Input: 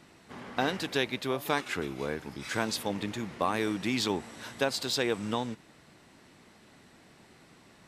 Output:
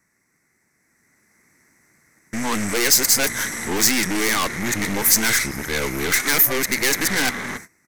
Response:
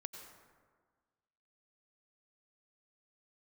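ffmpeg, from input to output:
-af "areverse,agate=range=0.112:threshold=0.00251:ratio=16:detection=peak,firequalizer=gain_entry='entry(320,0);entry(660,-5);entry(2100,9);entry(3000,-24);entry(6100,14);entry(9900,3)':delay=0.05:min_phase=1,dynaudnorm=f=760:g=3:m=2.99,equalizer=f=7100:t=o:w=1.2:g=-14.5,aeval=exprs='(tanh(28.2*val(0)+0.65)-tanh(0.65))/28.2':c=same,crystalizer=i=4.5:c=0,volume=2.37"

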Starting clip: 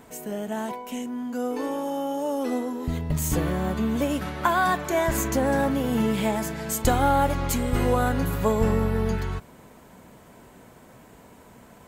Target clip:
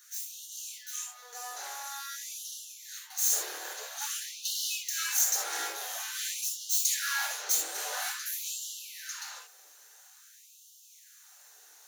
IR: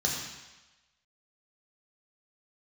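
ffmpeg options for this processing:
-filter_complex "[0:a]aeval=exprs='abs(val(0))':c=same,aderivative[s0];[1:a]atrim=start_sample=2205,atrim=end_sample=3969[s1];[s0][s1]afir=irnorm=-1:irlink=0,afftfilt=real='re*gte(b*sr/1024,300*pow(2800/300,0.5+0.5*sin(2*PI*0.49*pts/sr)))':imag='im*gte(b*sr/1024,300*pow(2800/300,0.5+0.5*sin(2*PI*0.49*pts/sr)))':win_size=1024:overlap=0.75"

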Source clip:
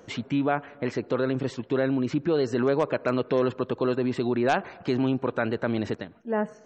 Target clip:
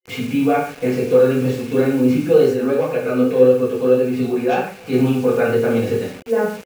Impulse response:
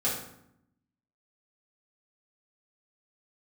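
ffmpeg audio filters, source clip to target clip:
-filter_complex "[1:a]atrim=start_sample=2205,afade=t=out:st=0.21:d=0.01,atrim=end_sample=9702[s0];[0:a][s0]afir=irnorm=-1:irlink=0,acrusher=bits=5:mix=0:aa=0.000001,asplit=3[s1][s2][s3];[s1]afade=t=out:st=2.53:d=0.02[s4];[s2]flanger=delay=5.2:depth=7.2:regen=51:speed=1.7:shape=triangular,afade=t=in:st=2.53:d=0.02,afade=t=out:st=4.92:d=0.02[s5];[s3]afade=t=in:st=4.92:d=0.02[s6];[s4][s5][s6]amix=inputs=3:normalize=0,superequalizer=7b=1.78:12b=2,volume=0.708"

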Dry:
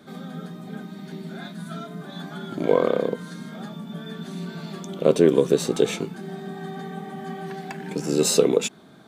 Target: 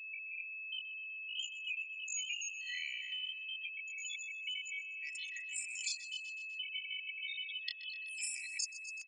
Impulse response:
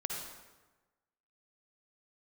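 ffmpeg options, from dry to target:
-filter_complex "[0:a]afftfilt=real='re*gte(hypot(re,im),0.0398)':imag='im*gte(hypot(re,im),0.0398)':win_size=1024:overlap=0.75,adynamicequalizer=threshold=0.002:dfrequency=3000:dqfactor=4.4:tfrequency=3000:tqfactor=4.4:attack=5:release=100:ratio=0.375:range=2:mode=cutabove:tftype=bell,asetrate=85689,aresample=44100,atempo=0.514651,areverse,acompressor=threshold=0.0316:ratio=16,areverse,aecho=1:1:1.7:0.72,afftfilt=real='re*between(b*sr/4096,1900,10000)':imag='im*between(b*sr/4096,1900,10000)':win_size=4096:overlap=0.75,aeval=exprs='val(0)+0.00178*sin(2*PI*2600*n/s)':c=same,asplit=2[s0][s1];[s1]aecho=0:1:125|250|375|500|625:0.133|0.0733|0.0403|0.0222|0.0122[s2];[s0][s2]amix=inputs=2:normalize=0,acrossover=split=2400|7700[s3][s4][s5];[s3]acompressor=threshold=0.00126:ratio=4[s6];[s4]acompressor=threshold=0.00251:ratio=4[s7];[s5]acompressor=threshold=0.00126:ratio=4[s8];[s6][s7][s8]amix=inputs=3:normalize=0,volume=3.35"

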